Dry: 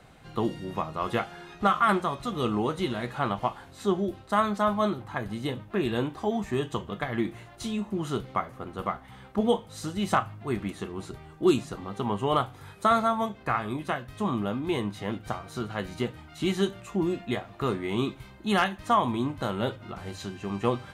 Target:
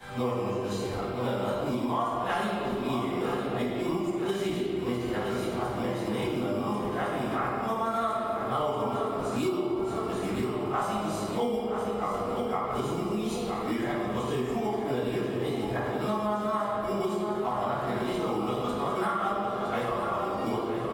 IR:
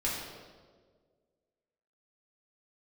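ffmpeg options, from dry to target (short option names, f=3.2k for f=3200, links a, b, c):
-filter_complex "[0:a]areverse,highshelf=f=7.3k:g=8.5,aecho=1:1:965|1930|2895|3860|4825|5790:0.299|0.158|0.0839|0.0444|0.0236|0.0125,acrossover=split=390|1100|1600[a][b][c][d];[a]acrusher=samples=17:mix=1:aa=0.000001[e];[b]acontrast=80[f];[e][f][c][d]amix=inputs=4:normalize=0[g];[1:a]atrim=start_sample=2205,asetrate=39249,aresample=44100[h];[g][h]afir=irnorm=-1:irlink=0,acompressor=threshold=-23dB:ratio=5,volume=-4dB"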